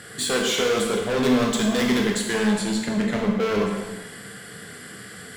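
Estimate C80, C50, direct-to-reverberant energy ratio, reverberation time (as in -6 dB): 5.0 dB, 3.0 dB, 0.0 dB, 1.2 s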